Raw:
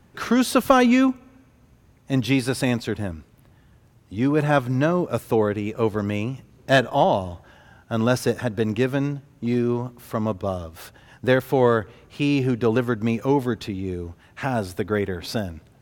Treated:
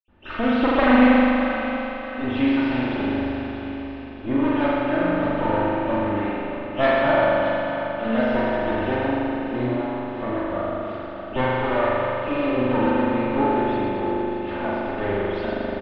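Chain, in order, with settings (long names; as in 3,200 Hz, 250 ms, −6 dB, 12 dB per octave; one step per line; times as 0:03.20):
lower of the sound and its delayed copy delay 3.3 ms
low-pass filter 5,700 Hz 12 dB per octave
high-shelf EQ 4,200 Hz −8 dB
repeating echo 626 ms, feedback 49%, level −10.5 dB
convolution reverb RT60 2.8 s, pre-delay 47 ms
level −2 dB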